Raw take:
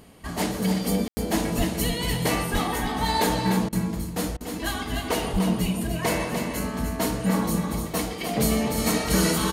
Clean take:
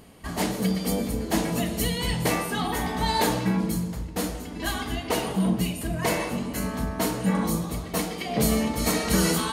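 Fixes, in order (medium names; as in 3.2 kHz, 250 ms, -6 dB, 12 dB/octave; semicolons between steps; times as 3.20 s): 1.57–1.69 s: high-pass 140 Hz 24 dB/octave; 2.52–2.64 s: high-pass 140 Hz 24 dB/octave; 5.32–5.44 s: high-pass 140 Hz 24 dB/octave; room tone fill 1.08–1.17 s; interpolate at 3.69/4.37 s, 35 ms; inverse comb 297 ms -6.5 dB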